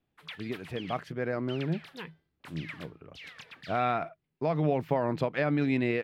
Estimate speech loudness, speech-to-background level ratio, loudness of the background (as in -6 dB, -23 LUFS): -31.5 LUFS, 15.5 dB, -47.0 LUFS